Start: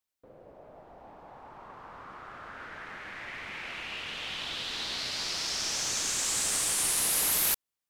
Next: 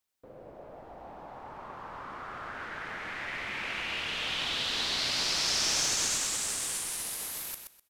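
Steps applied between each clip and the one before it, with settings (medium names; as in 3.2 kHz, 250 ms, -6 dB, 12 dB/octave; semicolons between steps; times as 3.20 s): compressor with a negative ratio -32 dBFS, ratio -0.5; feedback delay 126 ms, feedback 21%, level -7 dB; trim +1 dB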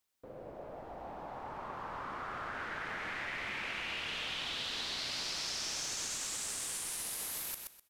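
compression 6:1, threshold -37 dBFS, peak gain reduction 11.5 dB; trim +1 dB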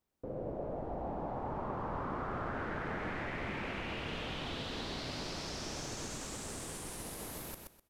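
tilt shelf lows +10 dB; trim +2 dB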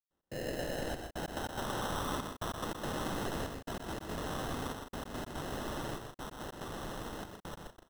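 trance gate ".x.xxxxxx..x" 143 bpm -60 dB; sample-and-hold 19×; on a send: loudspeakers at several distances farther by 42 m -6 dB, 55 m -10 dB; on the sum: trim +1 dB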